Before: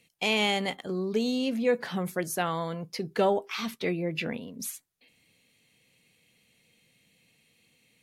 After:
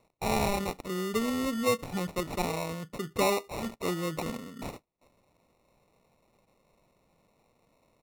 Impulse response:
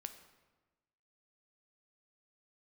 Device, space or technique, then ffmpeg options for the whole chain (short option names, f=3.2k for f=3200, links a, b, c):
crushed at another speed: -af "asetrate=55125,aresample=44100,acrusher=samples=22:mix=1:aa=0.000001,asetrate=35280,aresample=44100,volume=-2dB"